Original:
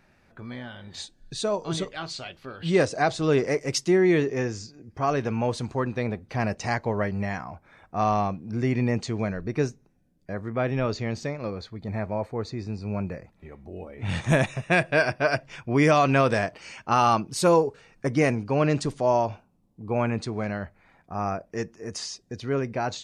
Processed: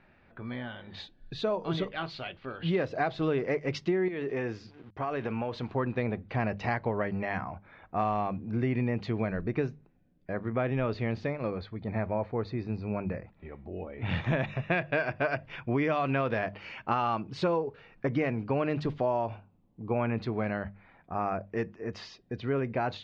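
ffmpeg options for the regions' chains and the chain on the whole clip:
ffmpeg -i in.wav -filter_complex "[0:a]asettb=1/sr,asplit=3[link_01][link_02][link_03];[link_01]atrim=end=4.084[link_04];[link_02]atrim=start=4.08:end=5.73,asetpts=PTS-STARTPTS,afade=type=in:duration=0.004:curve=qsin,afade=type=out:start_time=1.646:duration=0.004:curve=qsin,lowshelf=frequency=220:gain=-6.5,aeval=exprs='val(0)*gte(abs(val(0)),0.00237)':channel_layout=same,acompressor=threshold=-27dB:ratio=12:attack=3.2:release=140:knee=1:detection=peak[link_05];[link_03]atrim=start=5.726[link_06];[link_04][link_05]acrossfade=duration=0.004:curve1=hsin:curve2=qsin[link_07];[link_07][link_06]acrossfade=duration=0.004:curve1=qsin:curve2=hsin,lowpass=frequency=3500:width=0.5412,lowpass=frequency=3500:width=1.3066,bandreject=frequency=50:width_type=h:width=6,bandreject=frequency=100:width_type=h:width=6,bandreject=frequency=150:width_type=h:width=6,bandreject=frequency=200:width_type=h:width=6,acompressor=threshold=-25dB:ratio=6" out.wav

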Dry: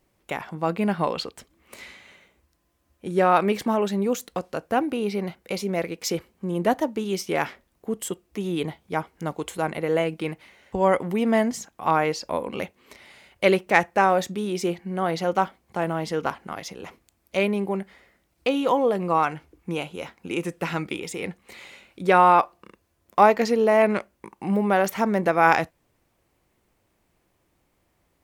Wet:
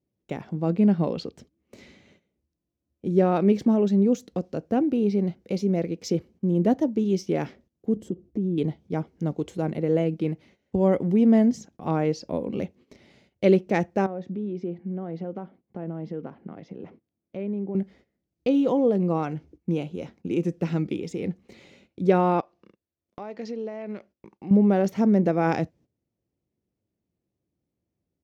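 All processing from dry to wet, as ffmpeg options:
ffmpeg -i in.wav -filter_complex "[0:a]asettb=1/sr,asplit=3[link_01][link_02][link_03];[link_01]atrim=end=7.964[link_04];[link_02]atrim=start=7.96:end=8.58,asetpts=PTS-STARTPTS,afade=type=in:duration=0.004:curve=qsin,afade=type=out:start_time=0.616:duration=0.004:curve=qsin,tiltshelf=frequency=800:gain=9.5,acompressor=threshold=-29dB:ratio=4:attack=3.2:release=140:knee=1:detection=peak[link_05];[link_03]atrim=start=8.576[link_06];[link_04][link_05]acrossfade=duration=0.004:curve1=hsin:curve2=qsin[link_07];[link_07][link_06]acrossfade=duration=0.004:curve1=qsin:curve2=hsin,asettb=1/sr,asplit=3[link_08][link_09][link_10];[link_08]atrim=end=14.064[link_11];[link_09]atrim=start=14.06:end=17.75,asetpts=PTS-STARTPTS,afade=type=in:duration=0.004:curve=qsin,afade=type=out:start_time=3.686:duration=0.004:curve=qsin,acompressor=threshold=-36dB:ratio=2:attack=3.2:release=140:knee=1:detection=peak,highpass=120,lowpass=2200[link_12];[link_10]atrim=start=17.746[link_13];[link_11][link_12]acrossfade=duration=0.004:curve1=hsin:curve2=qsin[link_14];[link_14][link_13]acrossfade=duration=0.004:curve1=qsin:curve2=hsin,asettb=1/sr,asplit=3[link_15][link_16][link_17];[link_15]atrim=end=22.404[link_18];[link_16]atrim=start=22.4:end=24.51,asetpts=PTS-STARTPTS,afade=type=in:duration=0.004:curve=qsin,afade=type=out:start_time=2.106:duration=0.004:curve=qsin,lowpass=5400,lowshelf=frequency=470:gain=-11.5,acompressor=threshold=-33dB:ratio=2.5:attack=3.2:release=140:knee=1:detection=peak[link_19];[link_17]atrim=start=24.506[link_20];[link_18][link_19]acrossfade=duration=0.004:curve1=hsin:curve2=qsin[link_21];[link_21][link_20]acrossfade=duration=0.004:curve1=qsin:curve2=hsin,highpass=83,agate=range=-14dB:threshold=-51dB:ratio=16:detection=peak,firequalizer=gain_entry='entry(220,0);entry(1000,-19);entry(5900,-12);entry(8900,-25)':delay=0.05:min_phase=1,volume=6dB" out.wav

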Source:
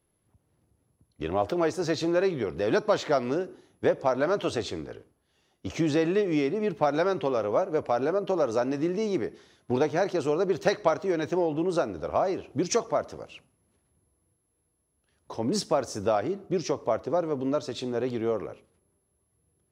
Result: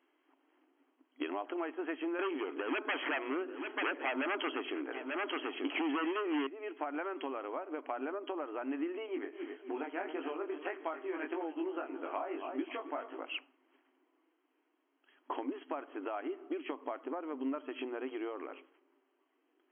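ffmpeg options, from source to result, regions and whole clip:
ffmpeg -i in.wav -filter_complex "[0:a]asettb=1/sr,asplit=3[link_01][link_02][link_03];[link_01]atrim=end=2.194[link_04];[link_02]atrim=start=2.19:end=6.47,asetpts=PTS-STARTPTS,afade=type=in:duration=0.004:curve=qsin,afade=type=out:start_time=4.276:duration=0.004:curve=qsin,aeval=exprs='0.299*sin(PI/2*3.98*val(0)/0.299)':channel_layout=same,aecho=1:1:889:0.112,atrim=end_sample=188748[link_05];[link_03]atrim=start=6.466[link_06];[link_04][link_05]acrossfade=duration=0.004:curve1=hsin:curve2=qsin[link_07];[link_07][link_06]acrossfade=duration=0.004:curve1=qsin:curve2=hsin,asettb=1/sr,asplit=3[link_08][link_09][link_10];[link_08]atrim=end=9.064[link_11];[link_09]atrim=start=9.06:end=13.19,asetpts=PTS-STARTPTS,afade=type=in:duration=0.004:curve=qsin,afade=type=out:start_time=4.126:duration=0.004:curve=qsin,asplit=2[link_12][link_13];[link_13]adelay=266,lowpass=frequency=4700:poles=1,volume=-14dB,asplit=2[link_14][link_15];[link_15]adelay=266,lowpass=frequency=4700:poles=1,volume=0.4,asplit=2[link_16][link_17];[link_17]adelay=266,lowpass=frequency=4700:poles=1,volume=0.4,asplit=2[link_18][link_19];[link_19]adelay=266,lowpass=frequency=4700:poles=1,volume=0.4[link_20];[link_12][link_14][link_16][link_18][link_20]amix=inputs=5:normalize=0,atrim=end_sample=182133,flanger=delay=18:depth=3.3:speed=1.7[link_21];[link_10]atrim=start=13.186[link_22];[link_11][link_21]acrossfade=duration=0.004:curve1=hsin:curve2=qsin[link_23];[link_23][link_22]acrossfade=duration=0.004:curve1=qsin:curve2=hsin,acompressor=threshold=-37dB:ratio=16,equalizer=frequency=510:width_type=o:width=0.8:gain=-12,afftfilt=real='re*between(b*sr/4096,250,3300)':imag='im*between(b*sr/4096,250,3300)':win_size=4096:overlap=0.75,volume=8.5dB" out.wav

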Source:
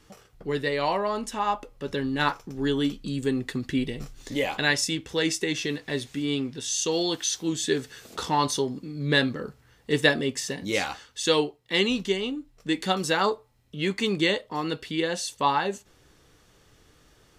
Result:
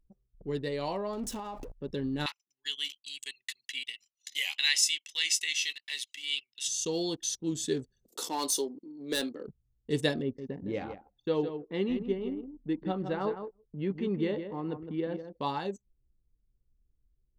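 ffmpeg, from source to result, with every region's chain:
ffmpeg -i in.wav -filter_complex "[0:a]asettb=1/sr,asplit=3[link_01][link_02][link_03];[link_01]atrim=end=1.134[link_04];[link_02]atrim=start=1.13:end=1.72,asetpts=PTS-STARTPTS,afade=type=in:duration=0.004:curve=qsin,afade=type=out:start_time=0.586:duration=0.004:curve=qsin,aeval=exprs='val(0)+0.5*0.0211*sgn(val(0))':channel_layout=same,acompressor=threshold=-26dB:ratio=4:attack=3.2:release=140:knee=1:detection=peak[link_05];[link_03]atrim=start=1.716[link_06];[link_04][link_05]acrossfade=duration=0.004:curve1=hsin:curve2=qsin[link_07];[link_07][link_06]acrossfade=duration=0.004:curve1=qsin:curve2=hsin,asettb=1/sr,asplit=3[link_08][link_09][link_10];[link_08]atrim=end=2.264[link_11];[link_09]atrim=start=2.26:end=6.68,asetpts=PTS-STARTPTS,afade=type=in:duration=0.004:curve=qsin,afade=type=out:start_time=4.416:duration=0.004:curve=qsin,acontrast=44,highpass=frequency=2500:width_type=q:width=2.6,aecho=1:1:1:0.35,atrim=end_sample=194922[link_12];[link_10]atrim=start=6.676[link_13];[link_11][link_12]acrossfade=duration=0.004:curve1=hsin:curve2=qsin[link_14];[link_14][link_13]acrossfade=duration=0.004:curve1=qsin:curve2=hsin,asettb=1/sr,asplit=3[link_15][link_16][link_17];[link_15]atrim=end=8.084[link_18];[link_16]atrim=start=8.08:end=9.47,asetpts=PTS-STARTPTS,afade=type=in:duration=0.004:curve=qsin,afade=type=out:start_time=1.386:duration=0.004:curve=qsin,highpass=frequency=280:width=0.5412,highpass=frequency=280:width=1.3066,aemphasis=mode=production:type=50kf,volume=16.5dB,asoftclip=hard,volume=-16.5dB[link_19];[link_17]atrim=start=9.466[link_20];[link_18][link_19]acrossfade=duration=0.004:curve1=hsin:curve2=qsin[link_21];[link_21][link_20]acrossfade=duration=0.004:curve1=qsin:curve2=hsin,asettb=1/sr,asplit=3[link_22][link_23][link_24];[link_22]atrim=end=10.224[link_25];[link_23]atrim=start=10.22:end=15.4,asetpts=PTS-STARTPTS,afade=type=in:duration=0.004:curve=qsin,afade=type=out:start_time=5.176:duration=0.004:curve=qsin,lowpass=1800,aecho=1:1:161|322:0.376|0.0601,atrim=end_sample=228438[link_26];[link_24]atrim=start=15.396[link_27];[link_25][link_26]acrossfade=duration=0.004:curve1=hsin:curve2=qsin[link_28];[link_28][link_27]acrossfade=duration=0.004:curve1=qsin:curve2=hsin,equalizer=frequency=1600:width_type=o:width=2.4:gain=-11,anlmdn=0.398,volume=-3dB" out.wav

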